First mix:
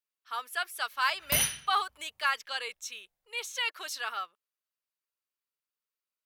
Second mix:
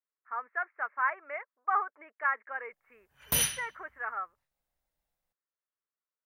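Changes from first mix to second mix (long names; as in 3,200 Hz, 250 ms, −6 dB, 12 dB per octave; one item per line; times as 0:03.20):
speech: add Butterworth low-pass 2,100 Hz 72 dB per octave
background: entry +2.00 s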